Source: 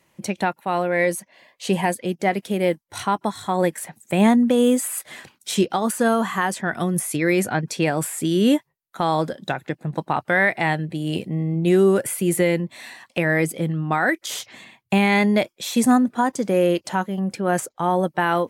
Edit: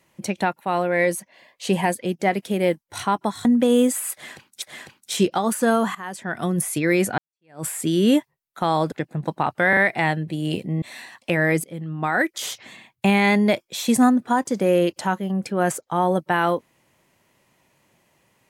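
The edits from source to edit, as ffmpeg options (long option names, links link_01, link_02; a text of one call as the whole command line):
ffmpeg -i in.wav -filter_complex "[0:a]asplit=10[link_01][link_02][link_03][link_04][link_05][link_06][link_07][link_08][link_09][link_10];[link_01]atrim=end=3.452[link_11];[link_02]atrim=start=4.328:end=5.502[link_12];[link_03]atrim=start=4.998:end=6.33,asetpts=PTS-STARTPTS,afade=type=out:start_time=1.328:duration=0.004:curve=hsin:silence=0.11885[link_13];[link_04]atrim=start=6.33:end=7.56,asetpts=PTS-STARTPTS,afade=type=in:duration=0.58:silence=0.11885,afade=type=out:start_time=1.226:duration=0.004:curve=hsin[link_14];[link_05]atrim=start=7.56:end=9.302,asetpts=PTS-STARTPTS,afade=type=in:duration=0.47:curve=exp[link_15];[link_06]atrim=start=9.618:end=10.432[link_16];[link_07]atrim=start=10.388:end=10.432[link_17];[link_08]atrim=start=10.388:end=11.442[link_18];[link_09]atrim=start=12.698:end=13.52,asetpts=PTS-STARTPTS,afade=type=out:start_time=0.818:duration=0.004:curve=hsin:silence=0.177828[link_19];[link_10]atrim=start=13.52,asetpts=PTS-STARTPTS,afade=type=in:duration=0.6:silence=0.177828[link_20];[link_11][link_12]acrossfade=duration=0.004:curve1=hsin:curve2=hsin[link_21];[link_13][link_14][link_15]concat=n=3:v=0:a=1[link_22];[link_21][link_22]acrossfade=duration=0.004:curve1=hsin:curve2=hsin[link_23];[link_23][link_16]acrossfade=duration=0.004:curve1=hsin:curve2=hsin[link_24];[link_24][link_17]acrossfade=duration=0.004:curve1=hsin:curve2=hsin[link_25];[link_25][link_18]acrossfade=duration=0.004:curve1=hsin:curve2=hsin[link_26];[link_19][link_20]concat=n=2:v=0:a=1[link_27];[link_26][link_27]acrossfade=duration=0.004:curve1=hsin:curve2=hsin" out.wav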